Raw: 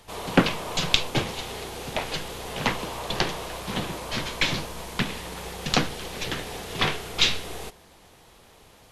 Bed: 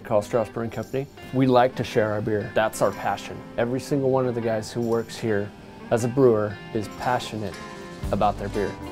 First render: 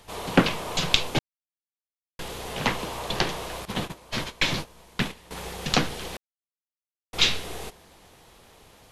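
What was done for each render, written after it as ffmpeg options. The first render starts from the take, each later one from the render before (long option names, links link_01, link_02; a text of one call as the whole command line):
ffmpeg -i in.wav -filter_complex "[0:a]asettb=1/sr,asplit=3[link_01][link_02][link_03];[link_01]atrim=end=3.654[link_04];[link_02]atrim=start=3.65:end=5.31,asetpts=PTS-STARTPTS,afade=type=in:duration=0.004:curve=qsin,afade=type=out:start_time=1.656:duration=0.004:curve=qsin,agate=range=-15dB:threshold=-32dB:ratio=16:release=100:detection=peak[link_05];[link_03]atrim=start=5.306[link_06];[link_04][link_05]acrossfade=duration=0.004:curve1=hsin:curve2=qsin[link_07];[link_07][link_06]acrossfade=duration=0.004:curve1=qsin:curve2=hsin,asplit=5[link_08][link_09][link_10][link_11][link_12];[link_08]atrim=end=1.19,asetpts=PTS-STARTPTS,afade=type=out:start_time=1.186:duration=0.004:curve=hsin[link_13];[link_09]atrim=start=1.19:end=2.19,asetpts=PTS-STARTPTS,volume=0[link_14];[link_10]atrim=start=2.19:end=6.17,asetpts=PTS-STARTPTS,afade=type=in:duration=0.004:curve=hsin,afade=type=out:start_time=3.976:duration=0.004:curve=hsin[link_15];[link_11]atrim=start=6.17:end=7.13,asetpts=PTS-STARTPTS,volume=0[link_16];[link_12]atrim=start=7.13,asetpts=PTS-STARTPTS,afade=type=in:duration=0.004:curve=hsin[link_17];[link_13][link_14][link_15][link_16][link_17]concat=n=5:v=0:a=1" out.wav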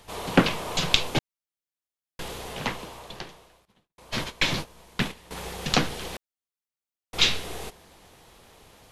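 ffmpeg -i in.wav -filter_complex "[0:a]asplit=2[link_01][link_02];[link_01]atrim=end=3.98,asetpts=PTS-STARTPTS,afade=type=out:start_time=2.28:duration=1.7:curve=qua[link_03];[link_02]atrim=start=3.98,asetpts=PTS-STARTPTS,afade=type=in:duration=0.004:curve=hsin[link_04];[link_03][link_04]concat=n=2:v=0:a=1" out.wav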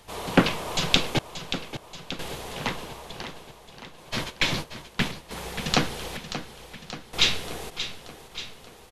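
ffmpeg -i in.wav -af "aecho=1:1:581|1162|1743|2324|2905|3486|4067:0.282|0.166|0.0981|0.0579|0.0342|0.0201|0.0119" out.wav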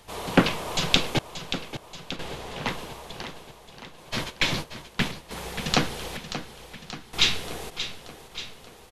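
ffmpeg -i in.wav -filter_complex "[0:a]asettb=1/sr,asplit=3[link_01][link_02][link_03];[link_01]atrim=end=2.164[link_04];[link_02]atrim=start=2.16:end=2.67,asetpts=PTS-STARTPTS,afade=type=in:duration=0.004:curve=qsin,afade=type=out:start_time=0.506:duration=0.004:curve=qsin,highshelf=frequency=8500:gain=-12[link_05];[link_03]atrim=start=2.666[link_06];[link_04][link_05]acrossfade=duration=0.004:curve1=hsin:curve2=qsin[link_07];[link_07][link_06]acrossfade=duration=0.004:curve1=qsin:curve2=hsin,asettb=1/sr,asplit=3[link_08][link_09][link_10];[link_08]atrim=end=6.924[link_11];[link_09]atrim=start=6.92:end=7.36,asetpts=PTS-STARTPTS,afade=type=in:duration=0.004:curve=qsin,afade=type=out:start_time=0.436:duration=0.004:curve=qsin,equalizer=frequency=550:width=7.1:gain=-14[link_12];[link_10]atrim=start=7.356[link_13];[link_11][link_12]acrossfade=duration=0.004:curve1=hsin:curve2=qsin[link_14];[link_14][link_13]acrossfade=duration=0.004:curve1=qsin:curve2=hsin" out.wav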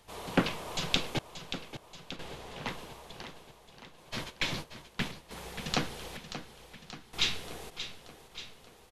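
ffmpeg -i in.wav -af "volume=-8dB" out.wav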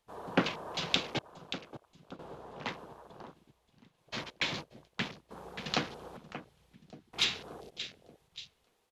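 ffmpeg -i in.wav -af "afwtdn=0.00562,highpass=frequency=180:poles=1" out.wav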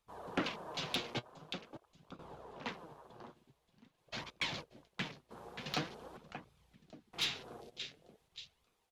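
ffmpeg -i in.wav -af "flanger=delay=0.8:depth=7.7:regen=49:speed=0.46:shape=sinusoidal,asoftclip=type=tanh:threshold=-25dB" out.wav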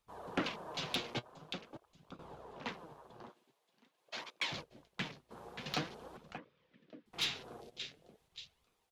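ffmpeg -i in.wav -filter_complex "[0:a]asettb=1/sr,asplit=3[link_01][link_02][link_03];[link_01]atrim=end=3.294[link_04];[link_02]atrim=start=3.29:end=4.52,asetpts=PTS-STARTPTS,afade=type=in:duration=0.004:curve=qsin,afade=type=out:start_time=1.226:duration=0.004:curve=qsin,highpass=360[link_05];[link_03]atrim=start=4.516[link_06];[link_04][link_05]acrossfade=duration=0.004:curve1=hsin:curve2=qsin[link_07];[link_07][link_06]acrossfade=duration=0.004:curve1=qsin:curve2=hsin,asettb=1/sr,asplit=3[link_08][link_09][link_10];[link_08]atrim=end=6.384[link_11];[link_09]atrim=start=6.38:end=7.06,asetpts=PTS-STARTPTS,afade=type=in:duration=0.004:curve=qsin,afade=type=out:start_time=0.676:duration=0.004:curve=qsin,highpass=210,equalizer=frequency=280:width_type=q:width=4:gain=5,equalizer=frequency=520:width_type=q:width=4:gain=8,equalizer=frequency=780:width_type=q:width=4:gain=-10,equalizer=frequency=1800:width_type=q:width=4:gain=4,equalizer=frequency=4200:width_type=q:width=4:gain=-5,lowpass=frequency=4400:width=0.5412,lowpass=frequency=4400:width=1.3066[link_12];[link_10]atrim=start=7.056[link_13];[link_11][link_12]acrossfade=duration=0.004:curve1=hsin:curve2=qsin[link_14];[link_14][link_13]acrossfade=duration=0.004:curve1=qsin:curve2=hsin" out.wav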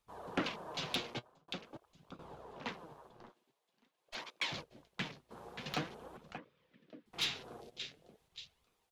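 ffmpeg -i in.wav -filter_complex "[0:a]asettb=1/sr,asplit=3[link_01][link_02][link_03];[link_01]atrim=end=3.094[link_04];[link_02]atrim=start=3.09:end=4.15,asetpts=PTS-STARTPTS,afade=type=in:duration=0.004:curve=qsin,afade=type=out:start_time=1.056:duration=0.004:curve=qsin,aeval=exprs='(tanh(112*val(0)+0.75)-tanh(0.75))/112':channel_layout=same[link_05];[link_03]atrim=start=4.146[link_06];[link_04][link_05]acrossfade=duration=0.004:curve1=hsin:curve2=qsin[link_07];[link_07][link_06]acrossfade=duration=0.004:curve1=qsin:curve2=hsin,asettb=1/sr,asplit=3[link_08][link_09][link_10];[link_08]atrim=end=5.694[link_11];[link_09]atrim=start=5.69:end=6.22,asetpts=PTS-STARTPTS,afade=type=in:duration=0.004:curve=qsin,afade=type=out:start_time=0.526:duration=0.004:curve=qsin,equalizer=frequency=4800:width=1.5:gain=-5[link_12];[link_10]atrim=start=6.216[link_13];[link_11][link_12]acrossfade=duration=0.004:curve1=hsin:curve2=qsin[link_14];[link_14][link_13]acrossfade=duration=0.004:curve1=qsin:curve2=hsin,asplit=2[link_15][link_16];[link_15]atrim=end=1.48,asetpts=PTS-STARTPTS,afade=type=out:start_time=1.03:duration=0.45[link_17];[link_16]atrim=start=1.48,asetpts=PTS-STARTPTS,afade=type=in:duration=0.004:curve=hsin[link_18];[link_17][link_18]concat=n=2:v=0:a=1" out.wav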